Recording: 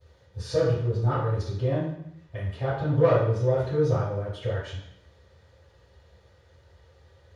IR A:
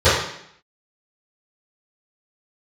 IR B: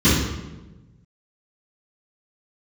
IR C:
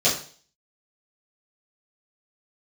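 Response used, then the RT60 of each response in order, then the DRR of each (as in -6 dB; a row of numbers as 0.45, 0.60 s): A; 0.70, 1.1, 0.45 s; -18.0, -16.0, -11.5 dB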